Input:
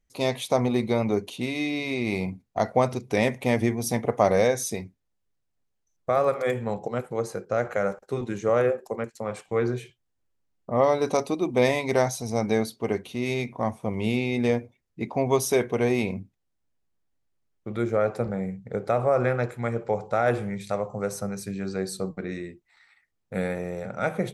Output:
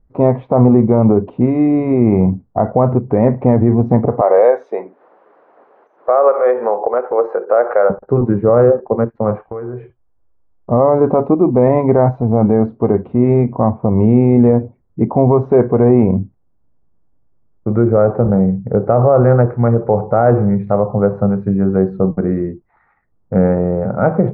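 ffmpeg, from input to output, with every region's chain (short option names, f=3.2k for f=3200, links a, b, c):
-filter_complex "[0:a]asettb=1/sr,asplit=3[a][b][c];[a]atrim=end=4.214[d];[b]atrim=start=4.21:end=7.9,asetpts=PTS-STARTPTS,afade=t=in:d=0.004:c=qsin,afade=t=out:st=3.686:d=0.004:c=qsin,highpass=f=430:w=0.5412,highpass=f=430:w=1.3066,highshelf=f=3.1k:g=11,acompressor=mode=upward:threshold=-24dB:ratio=2.5:attack=3.2:release=140:knee=2.83:detection=peak[e];[c]atrim=start=7.896[f];[d][e]acrossfade=d=0.004:c1=hsin:c2=qsin[g];[g][f]acrossfade=d=0.004:c1=qsin:c2=hsin,asettb=1/sr,asplit=3[h][i][j];[h]atrim=end=9.384[k];[i]atrim=start=9.38:end=10.7,asetpts=PTS-STARTPTS,afade=t=in:d=0.004:c=qsin,afade=t=out:st=1.316:d=0.004:c=qsin,lowpass=4.1k,equalizer=f=170:w=0.77:g=-12,acompressor=threshold=-38dB:ratio=5:attack=3.2:release=140:knee=1:detection=peak[l];[j]atrim=start=10.696[m];[k][l]acrossfade=d=0.004:c1=hsin:c2=qsin[n];[n][m]acrossfade=d=0.004:c1=qsin:c2=hsin,lowpass=f=1.2k:w=0.5412,lowpass=f=1.2k:w=1.3066,lowshelf=f=280:g=6,alimiter=level_in=14.5dB:limit=-1dB:release=50:level=0:latency=1,volume=-1dB"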